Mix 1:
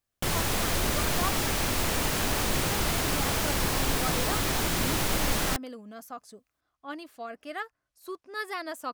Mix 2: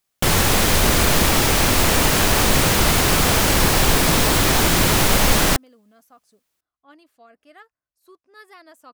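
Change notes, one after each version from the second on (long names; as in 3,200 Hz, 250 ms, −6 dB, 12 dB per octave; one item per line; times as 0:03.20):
speech −11.0 dB
background +11.0 dB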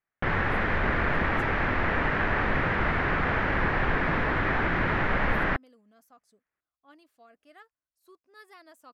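speech −6.0 dB
background: add transistor ladder low-pass 2,100 Hz, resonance 50%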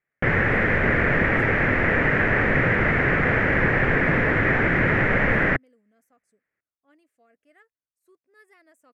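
speech −10.0 dB
master: add graphic EQ with 10 bands 125 Hz +8 dB, 250 Hz +4 dB, 500 Hz +8 dB, 1,000 Hz −5 dB, 2,000 Hz +11 dB, 4,000 Hz −8 dB, 8,000 Hz +9 dB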